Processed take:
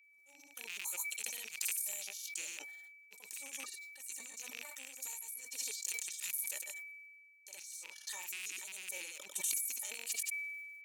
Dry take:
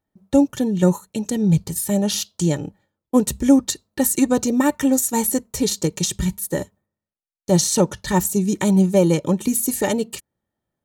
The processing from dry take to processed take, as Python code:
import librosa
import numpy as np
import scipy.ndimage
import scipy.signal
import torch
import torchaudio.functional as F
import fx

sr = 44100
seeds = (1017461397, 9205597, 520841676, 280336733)

y = fx.rattle_buzz(x, sr, strikes_db=-25.0, level_db=-18.0)
y = scipy.signal.sosfilt(scipy.signal.butter(2, 570.0, 'highpass', fs=sr, output='sos'), y)
y = fx.high_shelf(y, sr, hz=4800.0, db=3.5)
y = fx.over_compress(y, sr, threshold_db=-33.0, ratio=-1.0)
y = fx.granulator(y, sr, seeds[0], grain_ms=100.0, per_s=20.0, spray_ms=100.0, spread_st=0)
y = y + 10.0 ** (-46.0 / 20.0) * np.sin(2.0 * np.pi * 2300.0 * np.arange(len(y)) / sr)
y = np.diff(y, prepend=0.0)
y = fx.sustainer(y, sr, db_per_s=32.0)
y = F.gain(torch.from_numpy(y), -7.0).numpy()